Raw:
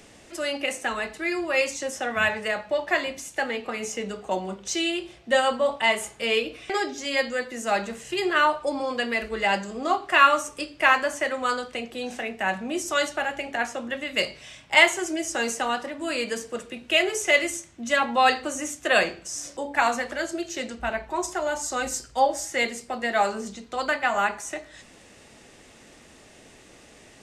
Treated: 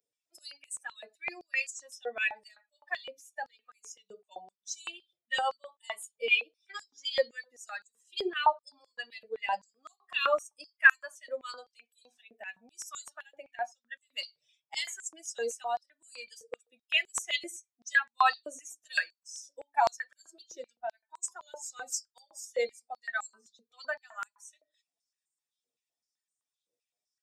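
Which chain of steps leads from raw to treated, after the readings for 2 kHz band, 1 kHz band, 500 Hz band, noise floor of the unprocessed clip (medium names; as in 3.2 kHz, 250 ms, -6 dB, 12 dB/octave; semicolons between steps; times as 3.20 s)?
-7.0 dB, -9.0 dB, -11.5 dB, -51 dBFS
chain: expander on every frequency bin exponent 2; step-sequenced high-pass 7.8 Hz 500–7600 Hz; trim -5.5 dB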